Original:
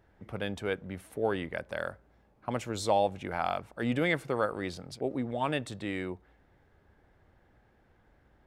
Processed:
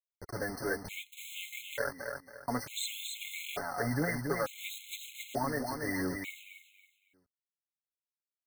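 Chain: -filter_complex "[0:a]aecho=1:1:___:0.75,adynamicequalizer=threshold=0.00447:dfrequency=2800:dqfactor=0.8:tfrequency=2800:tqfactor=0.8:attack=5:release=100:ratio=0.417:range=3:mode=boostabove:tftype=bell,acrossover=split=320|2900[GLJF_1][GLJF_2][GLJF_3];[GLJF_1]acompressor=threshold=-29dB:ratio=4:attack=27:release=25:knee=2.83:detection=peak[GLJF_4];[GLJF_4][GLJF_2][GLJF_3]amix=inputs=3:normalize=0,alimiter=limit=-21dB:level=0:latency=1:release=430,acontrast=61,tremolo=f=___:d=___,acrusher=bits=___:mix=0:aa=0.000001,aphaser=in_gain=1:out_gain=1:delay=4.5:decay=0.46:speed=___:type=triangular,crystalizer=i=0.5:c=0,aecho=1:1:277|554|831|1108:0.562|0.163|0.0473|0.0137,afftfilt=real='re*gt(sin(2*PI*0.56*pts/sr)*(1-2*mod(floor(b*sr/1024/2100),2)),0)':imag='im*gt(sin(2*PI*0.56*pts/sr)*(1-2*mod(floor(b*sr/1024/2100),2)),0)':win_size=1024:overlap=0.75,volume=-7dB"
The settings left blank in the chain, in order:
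7.1, 100, 0.261, 5, 0.99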